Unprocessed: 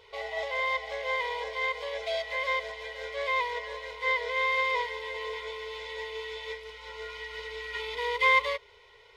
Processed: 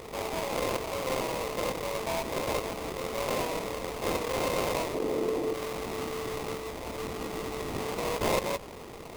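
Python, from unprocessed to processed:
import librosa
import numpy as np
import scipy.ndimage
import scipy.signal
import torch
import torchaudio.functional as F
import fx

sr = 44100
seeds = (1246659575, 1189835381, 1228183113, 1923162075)

y = fx.sample_hold(x, sr, seeds[0], rate_hz=1600.0, jitter_pct=20)
y = fx.peak_eq(y, sr, hz=340.0, db=15.0, octaves=1.3, at=(4.94, 5.54))
y = fx.env_flatten(y, sr, amount_pct=50)
y = F.gain(torch.from_numpy(y), -6.0).numpy()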